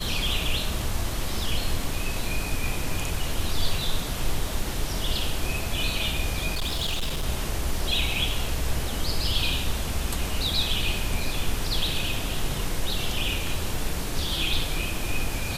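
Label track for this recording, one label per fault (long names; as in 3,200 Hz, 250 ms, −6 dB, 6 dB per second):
6.540000	7.260000	clipping −23 dBFS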